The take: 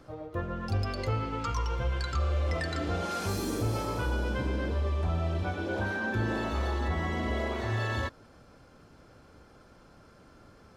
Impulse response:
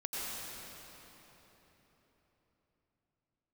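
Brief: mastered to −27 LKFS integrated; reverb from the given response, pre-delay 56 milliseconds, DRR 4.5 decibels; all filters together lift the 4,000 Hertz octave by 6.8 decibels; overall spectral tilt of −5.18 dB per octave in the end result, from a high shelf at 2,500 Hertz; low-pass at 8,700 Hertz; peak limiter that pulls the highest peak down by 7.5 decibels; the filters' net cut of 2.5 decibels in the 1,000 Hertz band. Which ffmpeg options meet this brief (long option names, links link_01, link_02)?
-filter_complex "[0:a]lowpass=8700,equalizer=frequency=1000:width_type=o:gain=-5,highshelf=frequency=2500:gain=5.5,equalizer=frequency=4000:width_type=o:gain=4,alimiter=level_in=2dB:limit=-24dB:level=0:latency=1,volume=-2dB,asplit=2[link_01][link_02];[1:a]atrim=start_sample=2205,adelay=56[link_03];[link_02][link_03]afir=irnorm=-1:irlink=0,volume=-8.5dB[link_04];[link_01][link_04]amix=inputs=2:normalize=0,volume=6.5dB"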